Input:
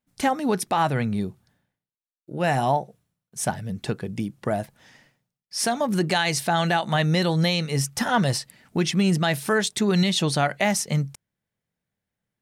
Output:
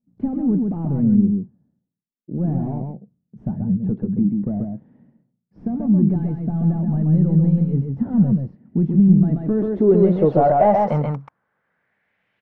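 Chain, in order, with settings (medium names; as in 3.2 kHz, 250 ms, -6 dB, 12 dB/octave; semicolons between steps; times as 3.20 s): overdrive pedal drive 22 dB, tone 2.7 kHz, clips at -11 dBFS; delay 133 ms -4 dB; low-pass sweep 210 Hz -> 2.8 kHz, 9.14–12.41 s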